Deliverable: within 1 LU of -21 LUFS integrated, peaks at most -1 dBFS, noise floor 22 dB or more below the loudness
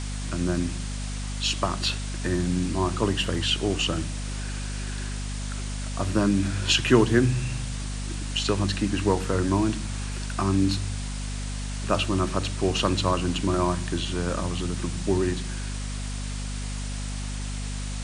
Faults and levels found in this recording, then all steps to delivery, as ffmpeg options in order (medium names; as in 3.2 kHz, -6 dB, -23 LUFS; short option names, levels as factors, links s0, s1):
hum 50 Hz; highest harmonic 250 Hz; hum level -29 dBFS; noise floor -31 dBFS; noise floor target -49 dBFS; loudness -27.0 LUFS; peak level -5.5 dBFS; loudness target -21.0 LUFS
-> -af "bandreject=f=50:t=h:w=6,bandreject=f=100:t=h:w=6,bandreject=f=150:t=h:w=6,bandreject=f=200:t=h:w=6,bandreject=f=250:t=h:w=6"
-af "afftdn=nr=18:nf=-31"
-af "volume=2,alimiter=limit=0.891:level=0:latency=1"